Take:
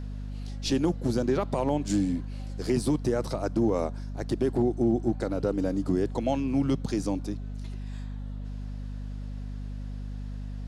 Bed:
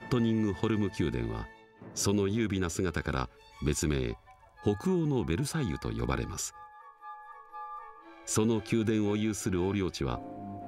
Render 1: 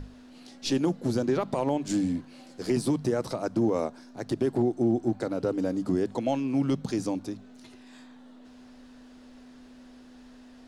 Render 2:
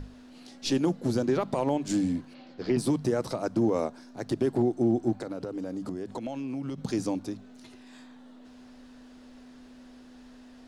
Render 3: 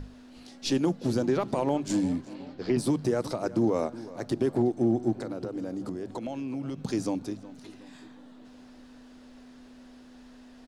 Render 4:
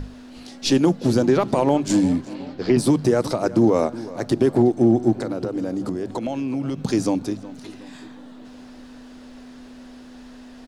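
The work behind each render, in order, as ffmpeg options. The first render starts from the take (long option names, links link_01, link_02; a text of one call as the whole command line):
ffmpeg -i in.wav -af "bandreject=frequency=50:width_type=h:width=6,bandreject=frequency=100:width_type=h:width=6,bandreject=frequency=150:width_type=h:width=6,bandreject=frequency=200:width_type=h:width=6" out.wav
ffmpeg -i in.wav -filter_complex "[0:a]asplit=3[link_01][link_02][link_03];[link_01]afade=type=out:start_time=2.33:duration=0.02[link_04];[link_02]lowpass=frequency=4400:width=0.5412,lowpass=frequency=4400:width=1.3066,afade=type=in:start_time=2.33:duration=0.02,afade=type=out:start_time=2.77:duration=0.02[link_05];[link_03]afade=type=in:start_time=2.77:duration=0.02[link_06];[link_04][link_05][link_06]amix=inputs=3:normalize=0,asplit=3[link_07][link_08][link_09];[link_07]afade=type=out:start_time=5.16:duration=0.02[link_10];[link_08]acompressor=threshold=-30dB:ratio=12:attack=3.2:release=140:knee=1:detection=peak,afade=type=in:start_time=5.16:duration=0.02,afade=type=out:start_time=6.77:duration=0.02[link_11];[link_09]afade=type=in:start_time=6.77:duration=0.02[link_12];[link_10][link_11][link_12]amix=inputs=3:normalize=0" out.wav
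ffmpeg -i in.wav -filter_complex "[0:a]asplit=2[link_01][link_02];[link_02]adelay=367,lowpass=frequency=3800:poles=1,volume=-17dB,asplit=2[link_03][link_04];[link_04]adelay=367,lowpass=frequency=3800:poles=1,volume=0.53,asplit=2[link_05][link_06];[link_06]adelay=367,lowpass=frequency=3800:poles=1,volume=0.53,asplit=2[link_07][link_08];[link_08]adelay=367,lowpass=frequency=3800:poles=1,volume=0.53,asplit=2[link_09][link_10];[link_10]adelay=367,lowpass=frequency=3800:poles=1,volume=0.53[link_11];[link_01][link_03][link_05][link_07][link_09][link_11]amix=inputs=6:normalize=0" out.wav
ffmpeg -i in.wav -af "volume=8.5dB" out.wav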